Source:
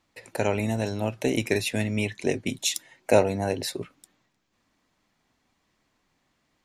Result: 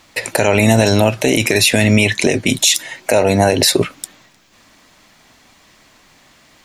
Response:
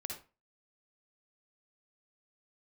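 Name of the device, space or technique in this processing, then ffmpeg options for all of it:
mastering chain: -af "equalizer=frequency=620:width_type=o:width=0.28:gain=3.5,acompressor=threshold=-25dB:ratio=3,tiltshelf=frequency=1200:gain=-3.5,asoftclip=type=hard:threshold=-11.5dB,alimiter=level_in=23dB:limit=-1dB:release=50:level=0:latency=1,volume=-1dB"

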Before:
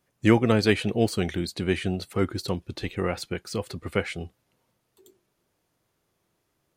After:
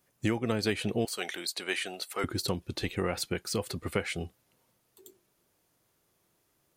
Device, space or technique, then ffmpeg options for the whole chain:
ASMR close-microphone chain: -filter_complex "[0:a]asettb=1/sr,asplit=3[link_01][link_02][link_03];[link_01]atrim=end=1.054[link_04];[link_02]atrim=start=1.05:end=2.24,asetpts=PTS-STARTPTS,afade=type=in:duration=0.004:curve=qsin,afade=type=out:start_time=1.186:duration=0.004:curve=qsin,highpass=670[link_05];[link_03]atrim=start=2.236[link_06];[link_04][link_05]acrossfade=duration=0.004:curve1=hsin:curve2=qsin[link_07];[link_07][link_06]acrossfade=duration=0.004:curve1=qsin:curve2=hsin,lowshelf=frequency=210:gain=3.5,acompressor=threshold=-23dB:ratio=8,lowshelf=frequency=180:gain=-6,highshelf=frequency=7200:gain=8"

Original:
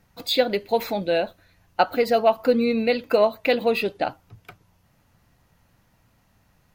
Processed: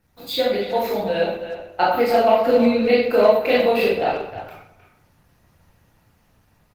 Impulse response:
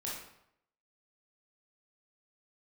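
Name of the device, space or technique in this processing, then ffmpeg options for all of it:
speakerphone in a meeting room: -filter_complex "[0:a]asplit=3[link_01][link_02][link_03];[link_01]afade=type=out:start_time=1.96:duration=0.02[link_04];[link_02]adynamicequalizer=threshold=0.00355:dfrequency=160:dqfactor=5.5:tfrequency=160:tqfactor=5.5:attack=5:release=100:ratio=0.375:range=1.5:mode=cutabove:tftype=bell,afade=type=in:start_time=1.96:duration=0.02,afade=type=out:start_time=2.43:duration=0.02[link_05];[link_03]afade=type=in:start_time=2.43:duration=0.02[link_06];[link_04][link_05][link_06]amix=inputs=3:normalize=0[link_07];[1:a]atrim=start_sample=2205[link_08];[link_07][link_08]afir=irnorm=-1:irlink=0,asplit=2[link_09][link_10];[link_10]adelay=310,highpass=300,lowpass=3400,asoftclip=type=hard:threshold=-15dB,volume=-10dB[link_11];[link_09][link_11]amix=inputs=2:normalize=0,dynaudnorm=framelen=630:gausssize=5:maxgain=4.5dB" -ar 48000 -c:a libopus -b:a 20k

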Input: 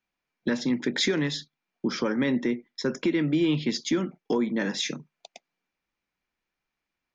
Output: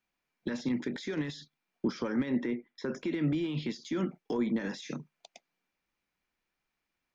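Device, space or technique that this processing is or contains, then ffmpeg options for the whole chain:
de-esser from a sidechain: -filter_complex "[0:a]asettb=1/sr,asplit=3[link_01][link_02][link_03];[link_01]atrim=end=2.294[link_04];[link_02]atrim=start=2.29:end=2.96,asetpts=PTS-STARTPTS,afade=type=in:duration=0.004:curve=qsin,afade=type=out:start_time=0.666:duration=0.004:curve=qsin,bass=frequency=250:gain=-3,treble=frequency=4000:gain=-12[link_05];[link_03]atrim=start=2.956[link_06];[link_04][link_05]acrossfade=duration=0.004:curve1=hsin:curve2=qsin[link_07];[link_07][link_06]acrossfade=duration=0.004:curve1=qsin:curve2=hsin,asplit=2[link_08][link_09];[link_09]highpass=frequency=4800:poles=1,apad=whole_len=315128[link_10];[link_08][link_10]sidechaincompress=threshold=-45dB:ratio=8:attack=0.62:release=50"

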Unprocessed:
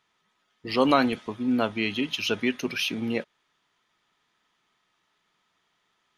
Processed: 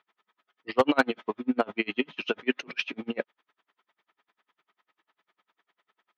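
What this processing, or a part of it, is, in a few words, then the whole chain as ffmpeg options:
helicopter radio: -af "highpass=310,lowpass=2600,aeval=exprs='val(0)*pow(10,-36*(0.5-0.5*cos(2*PI*10*n/s))/20)':channel_layout=same,asoftclip=type=hard:threshold=-19dB,volume=7.5dB"

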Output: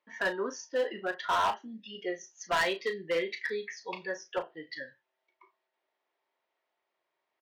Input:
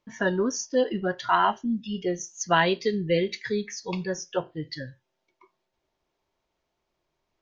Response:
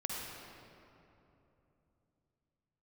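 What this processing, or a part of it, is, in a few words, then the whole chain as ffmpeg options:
megaphone: -filter_complex "[0:a]highpass=520,lowpass=3400,equalizer=frequency=1900:width_type=o:width=0.2:gain=6.5,asoftclip=type=hard:threshold=-22dB,asplit=2[link_01][link_02];[link_02]adelay=36,volume=-10dB[link_03];[link_01][link_03]amix=inputs=2:normalize=0,volume=-2dB"

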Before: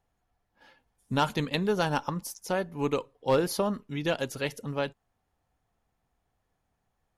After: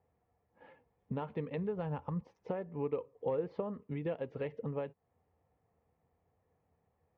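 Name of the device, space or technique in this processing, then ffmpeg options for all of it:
bass amplifier: -filter_complex "[0:a]acompressor=threshold=-38dB:ratio=5,highpass=83,equalizer=frequency=83:width_type=q:width=4:gain=10,equalizer=frequency=160:width_type=q:width=4:gain=4,equalizer=frequency=470:width_type=q:width=4:gain=10,equalizer=frequency=1500:width_type=q:width=4:gain=-9,lowpass=frequency=2200:width=0.5412,lowpass=frequency=2200:width=1.3066,asplit=3[link_01][link_02][link_03];[link_01]afade=type=out:start_time=1.57:duration=0.02[link_04];[link_02]asubboost=boost=6.5:cutoff=140,afade=type=in:start_time=1.57:duration=0.02,afade=type=out:start_time=2.22:duration=0.02[link_05];[link_03]afade=type=in:start_time=2.22:duration=0.02[link_06];[link_04][link_05][link_06]amix=inputs=3:normalize=0"

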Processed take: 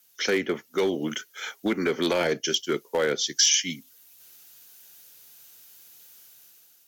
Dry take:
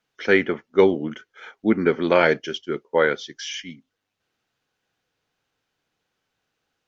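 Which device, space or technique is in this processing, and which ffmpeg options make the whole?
FM broadcast chain: -filter_complex "[0:a]highpass=79,dynaudnorm=framelen=190:gausssize=7:maxgain=9.5dB,acrossover=split=320|660[link_01][link_02][link_03];[link_01]acompressor=threshold=-28dB:ratio=4[link_04];[link_02]acompressor=threshold=-20dB:ratio=4[link_05];[link_03]acompressor=threshold=-31dB:ratio=4[link_06];[link_04][link_05][link_06]amix=inputs=3:normalize=0,aemphasis=mode=production:type=75fm,alimiter=limit=-14.5dB:level=0:latency=1:release=12,asoftclip=type=hard:threshold=-17dB,lowpass=frequency=15000:width=0.5412,lowpass=frequency=15000:width=1.3066,aemphasis=mode=production:type=75fm"

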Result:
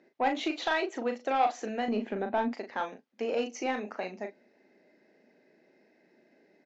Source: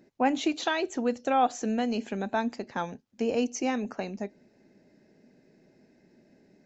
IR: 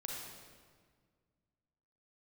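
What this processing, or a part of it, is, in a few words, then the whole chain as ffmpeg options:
intercom: -filter_complex "[0:a]asettb=1/sr,asplit=3[link_01][link_02][link_03];[link_01]atrim=end=1.884[link_04];[link_02]atrim=start=1.88:end=2.53,asetpts=PTS-STARTPTS,afade=type=in:duration=0.004:curve=qsin,afade=type=out:start_time=0.646:duration=0.004:curve=qsin,aemphasis=mode=reproduction:type=riaa[link_05];[link_03]atrim=start=2.526[link_06];[link_04][link_05]acrossfade=duration=0.004:curve1=hsin:curve2=qsin[link_07];[link_07][link_06]acrossfade=duration=0.004:curve1=qsin:curve2=hsin,highpass=370,lowpass=4000,equalizer=frequency=2000:width_type=o:width=0.23:gain=4.5,asoftclip=type=tanh:threshold=-19dB,asplit=2[link_08][link_09];[link_09]adelay=38,volume=-6.5dB[link_10];[link_08][link_10]amix=inputs=2:normalize=0"

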